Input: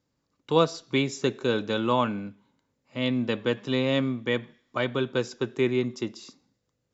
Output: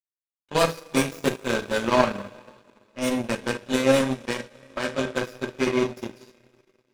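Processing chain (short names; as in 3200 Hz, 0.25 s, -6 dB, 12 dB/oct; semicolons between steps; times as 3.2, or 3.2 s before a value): tracing distortion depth 0.17 ms; two-slope reverb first 0.33 s, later 4.9 s, from -19 dB, DRR -4.5 dB; power-law curve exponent 2; small resonant body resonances 600/1600/2500 Hz, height 8 dB; in parallel at -3 dB: hard clip -17 dBFS, distortion -11 dB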